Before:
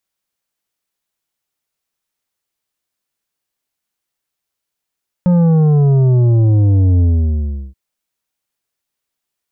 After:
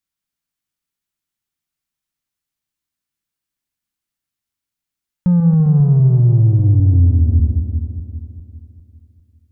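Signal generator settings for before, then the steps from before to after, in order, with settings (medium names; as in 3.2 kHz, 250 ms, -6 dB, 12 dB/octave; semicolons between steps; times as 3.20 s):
sub drop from 180 Hz, over 2.48 s, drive 8.5 dB, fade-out 0.73 s, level -9 dB
backward echo that repeats 200 ms, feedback 63%, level -7 dB; FFT filter 130 Hz 0 dB, 300 Hz -3 dB, 460 Hz -13 dB, 1.4 kHz -6 dB; peak limiter -6.5 dBFS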